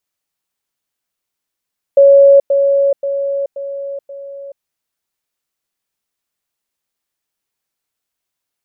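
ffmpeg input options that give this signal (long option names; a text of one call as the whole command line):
ffmpeg -f lavfi -i "aevalsrc='pow(10,(-3-6*floor(t/0.53))/20)*sin(2*PI*557*t)*clip(min(mod(t,0.53),0.43-mod(t,0.53))/0.005,0,1)':duration=2.65:sample_rate=44100" out.wav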